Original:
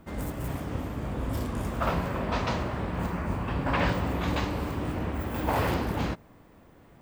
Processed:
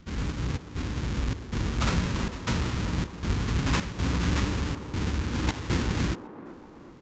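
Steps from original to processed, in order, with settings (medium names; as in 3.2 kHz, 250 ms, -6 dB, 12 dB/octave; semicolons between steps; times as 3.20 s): square wave that keeps the level; peaking EQ 650 Hz -11 dB 1 oct; in parallel at -11.5 dB: word length cut 6-bit, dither none; on the sum: trance gate "xxx.xxx.xxxx." 79 bpm -12 dB; on a send: feedback echo behind a band-pass 383 ms, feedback 54%, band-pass 560 Hz, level -9 dB; on the sum: resampled via 16 kHz; trim -3.5 dB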